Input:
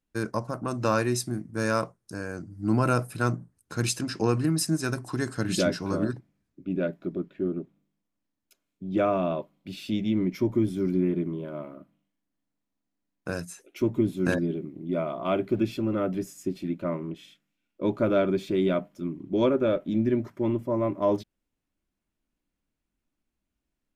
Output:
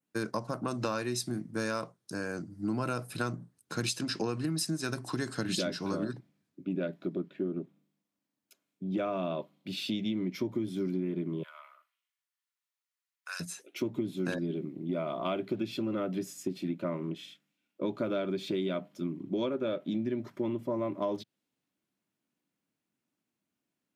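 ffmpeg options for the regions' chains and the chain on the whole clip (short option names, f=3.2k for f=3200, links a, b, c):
-filter_complex "[0:a]asettb=1/sr,asplit=3[a][b][c];[a]atrim=end=11.434[d];[b]atrim=start=11.43:end=13.4,asetpts=PTS-STARTPTS,afade=t=in:d=0.004:c=qsin,afade=t=out:st=1.966:d=0.004:c=qsin,highpass=f=1.2k:w=0.5412,highpass=f=1.2k:w=1.3066,bandreject=f=1.6k:w=18[e];[c]atrim=start=13.396[f];[d][e]acrossfade=d=0.004:c1=hsin:c2=qsin[g];[g][f]acrossfade=d=0.004:c1=qsin:c2=hsin,highpass=f=120:w=0.5412,highpass=f=120:w=1.3066,adynamicequalizer=threshold=0.00251:dfrequency=3800:dqfactor=1.4:tfrequency=3800:tqfactor=1.4:attack=5:release=100:ratio=0.375:range=3.5:mode=boostabove:tftype=bell,acompressor=threshold=-29dB:ratio=6"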